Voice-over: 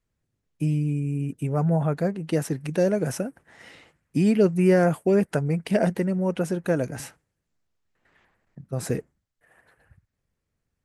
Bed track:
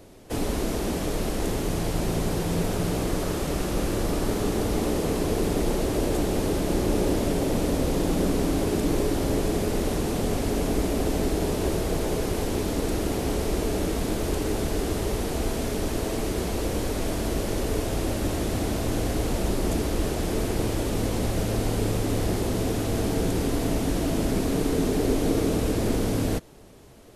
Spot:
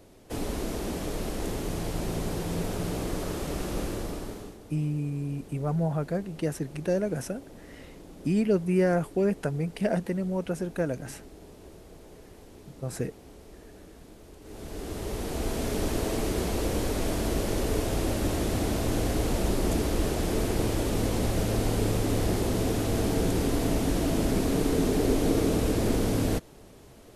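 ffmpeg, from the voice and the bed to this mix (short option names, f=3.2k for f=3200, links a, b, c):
-filter_complex "[0:a]adelay=4100,volume=-5dB[a];[1:a]volume=17dB,afade=t=out:st=3.79:d=0.79:silence=0.125893,afade=t=in:st=14.41:d=1.4:silence=0.0794328[b];[a][b]amix=inputs=2:normalize=0"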